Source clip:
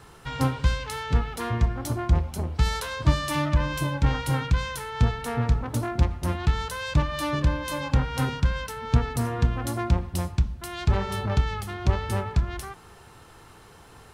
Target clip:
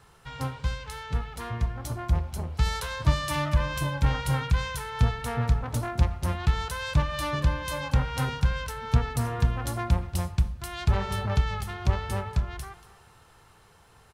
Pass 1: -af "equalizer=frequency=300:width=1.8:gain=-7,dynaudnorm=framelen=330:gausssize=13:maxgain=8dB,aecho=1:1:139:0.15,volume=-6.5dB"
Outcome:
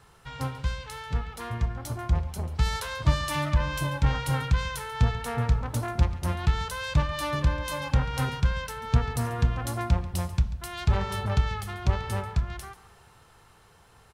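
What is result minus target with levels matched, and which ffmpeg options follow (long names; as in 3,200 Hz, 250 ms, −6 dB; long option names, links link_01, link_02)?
echo 95 ms early
-af "equalizer=frequency=300:width=1.8:gain=-7,dynaudnorm=framelen=330:gausssize=13:maxgain=8dB,aecho=1:1:234:0.15,volume=-6.5dB"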